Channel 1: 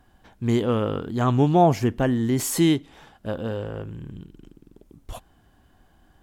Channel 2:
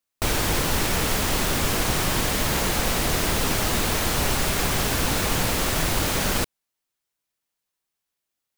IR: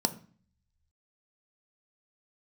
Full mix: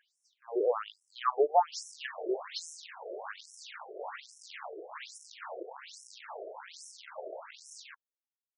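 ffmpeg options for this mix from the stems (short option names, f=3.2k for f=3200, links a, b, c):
-filter_complex "[0:a]volume=0dB[a];[1:a]afwtdn=0.0447,acrusher=samples=42:mix=1:aa=0.000001:lfo=1:lforange=67.2:lforate=2.2,adelay=1500,volume=-7.5dB[b];[a][b]amix=inputs=2:normalize=0,afftfilt=real='re*between(b*sr/1024,480*pow(7600/480,0.5+0.5*sin(2*PI*1.2*pts/sr))/1.41,480*pow(7600/480,0.5+0.5*sin(2*PI*1.2*pts/sr))*1.41)':imag='im*between(b*sr/1024,480*pow(7600/480,0.5+0.5*sin(2*PI*1.2*pts/sr))/1.41,480*pow(7600/480,0.5+0.5*sin(2*PI*1.2*pts/sr))*1.41)':win_size=1024:overlap=0.75"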